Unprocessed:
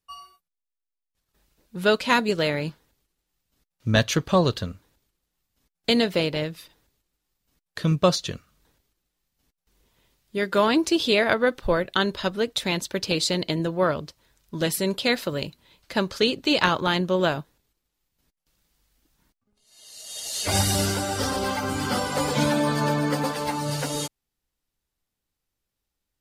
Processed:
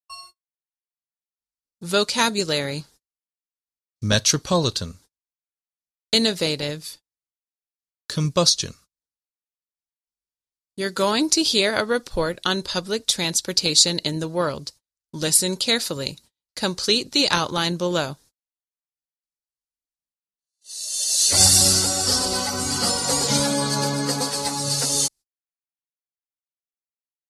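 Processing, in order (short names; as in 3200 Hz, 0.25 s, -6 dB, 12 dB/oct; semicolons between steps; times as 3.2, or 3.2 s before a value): gate -48 dBFS, range -39 dB; band shelf 7100 Hz +14 dB; speed mistake 25 fps video run at 24 fps; gain -1 dB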